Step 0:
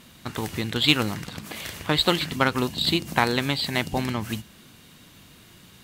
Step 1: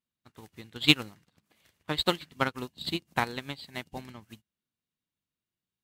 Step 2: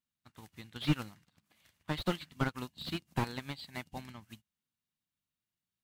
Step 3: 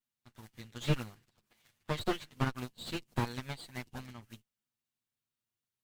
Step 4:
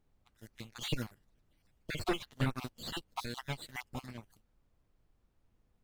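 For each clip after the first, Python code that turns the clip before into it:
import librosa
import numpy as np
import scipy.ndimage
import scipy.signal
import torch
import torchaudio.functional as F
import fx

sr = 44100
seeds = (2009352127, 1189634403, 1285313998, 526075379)

y1 = fx.upward_expand(x, sr, threshold_db=-43.0, expansion=2.5)
y2 = fx.peak_eq(y1, sr, hz=420.0, db=-7.5, octaves=0.86)
y2 = fx.slew_limit(y2, sr, full_power_hz=47.0)
y2 = F.gain(torch.from_numpy(y2), -1.5).numpy()
y3 = fx.lower_of_two(y2, sr, delay_ms=8.4)
y4 = fx.spec_dropout(y3, sr, seeds[0], share_pct=38)
y4 = fx.leveller(y4, sr, passes=2)
y4 = fx.dmg_noise_colour(y4, sr, seeds[1], colour='brown', level_db=-66.0)
y4 = F.gain(torch.from_numpy(y4), -4.0).numpy()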